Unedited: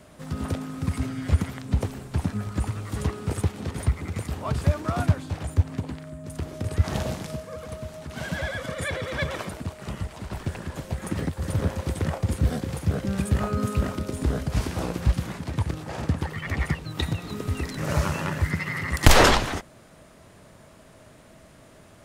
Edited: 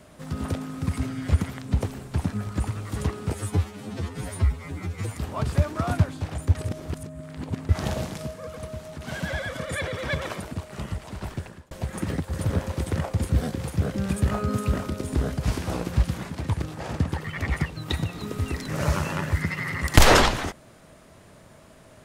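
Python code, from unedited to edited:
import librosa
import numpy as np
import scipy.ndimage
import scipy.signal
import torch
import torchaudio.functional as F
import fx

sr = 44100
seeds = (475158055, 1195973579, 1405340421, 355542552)

y = fx.edit(x, sr, fx.stretch_span(start_s=3.33, length_s=0.91, factor=2.0),
    fx.reverse_span(start_s=5.64, length_s=1.14),
    fx.fade_out_span(start_s=10.35, length_s=0.45), tone=tone)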